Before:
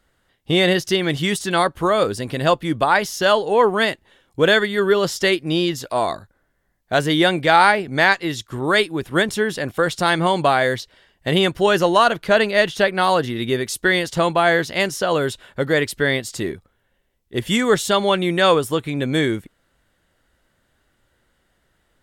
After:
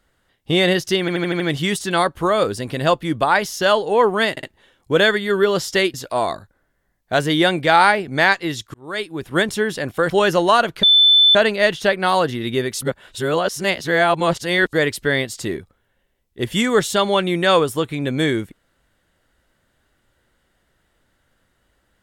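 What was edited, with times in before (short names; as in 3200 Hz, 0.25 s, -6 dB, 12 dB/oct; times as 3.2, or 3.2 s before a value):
1 stutter 0.08 s, 6 plays
3.91 stutter 0.06 s, 3 plays
5.42–5.74 cut
8.54–9.19 fade in linear
9.9–11.57 cut
12.3 add tone 3520 Hz -8.5 dBFS 0.52 s
13.77–15.68 reverse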